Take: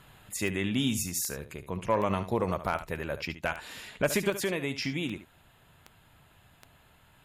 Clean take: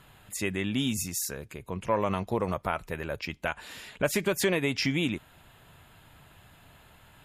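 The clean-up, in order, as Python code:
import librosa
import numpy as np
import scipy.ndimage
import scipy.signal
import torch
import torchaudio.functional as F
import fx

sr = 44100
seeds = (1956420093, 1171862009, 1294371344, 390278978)

y = fx.fix_declip(x, sr, threshold_db=-16.0)
y = fx.fix_declick_ar(y, sr, threshold=10.0)
y = fx.fix_echo_inverse(y, sr, delay_ms=72, level_db=-12.5)
y = fx.gain(y, sr, db=fx.steps((0.0, 0.0), (4.3, 5.0)))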